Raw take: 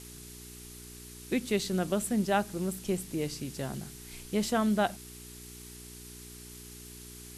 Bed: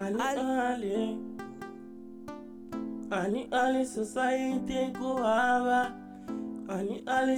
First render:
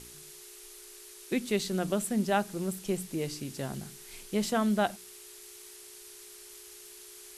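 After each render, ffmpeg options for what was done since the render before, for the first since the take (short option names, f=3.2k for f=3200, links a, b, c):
-af "bandreject=f=60:t=h:w=4,bandreject=f=120:t=h:w=4,bandreject=f=180:t=h:w=4,bandreject=f=240:t=h:w=4,bandreject=f=300:t=h:w=4"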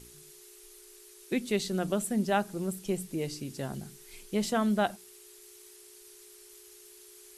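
-af "afftdn=nr=6:nf=-50"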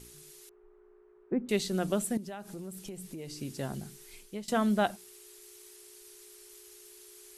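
-filter_complex "[0:a]asettb=1/sr,asplit=3[a][b][c];[a]atrim=end=0.494[d];[b]atrim=start=0.49:end=1.49,asetpts=PTS-STARTPTS,afade=t=in:d=0.004:c=qsin,afade=t=out:st=0.996:d=0.004:c=qsin,lowpass=f=1.3k:w=0.5412,lowpass=f=1.3k:w=1.3066[e];[c]atrim=start=1.486[f];[d][e]acrossfade=d=0.004:c1=hsin:c2=qsin[g];[g][f]acrossfade=d=0.004:c1=qsin:c2=hsin,asettb=1/sr,asplit=3[h][i][j];[h]atrim=end=2.174[k];[i]atrim=start=2.17:end=3.41,asetpts=PTS-STARTPTS,afade=t=in:d=0.004:c=qsin,afade=t=out:st=1.236:d=0.004:c=qsin,acompressor=threshold=-38dB:ratio=8:attack=3.2:release=140:knee=1:detection=peak[l];[j]atrim=start=3.406[m];[k][l]acrossfade=d=0.004:c1=hsin:c2=qsin[n];[n][m]acrossfade=d=0.004:c1=qsin:c2=hsin,asplit=2[o][p];[o]atrim=end=4.48,asetpts=PTS-STARTPTS,afade=t=out:st=4.05:d=0.43:silence=0.0944061[q];[p]atrim=start=4.48,asetpts=PTS-STARTPTS,afade=t=in:d=0.004:c=hsin:silence=0.0944061[r];[q][r]concat=n=2:v=0:a=1"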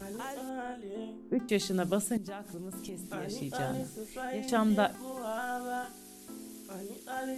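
-filter_complex "[1:a]volume=-10dB[a];[0:a][a]amix=inputs=2:normalize=0"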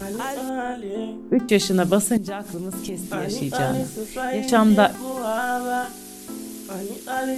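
-af "volume=11.5dB"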